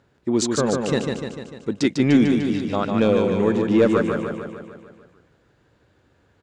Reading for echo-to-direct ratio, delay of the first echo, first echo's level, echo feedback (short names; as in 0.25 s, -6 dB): -2.5 dB, 0.149 s, -4.5 dB, 59%